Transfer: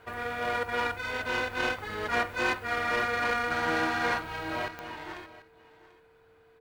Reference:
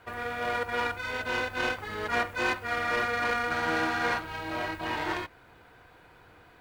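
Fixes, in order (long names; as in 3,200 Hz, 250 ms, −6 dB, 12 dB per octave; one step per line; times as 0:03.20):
click removal
notch filter 450 Hz, Q 30
echo removal 739 ms −18.5 dB
level correction +9.5 dB, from 0:04.68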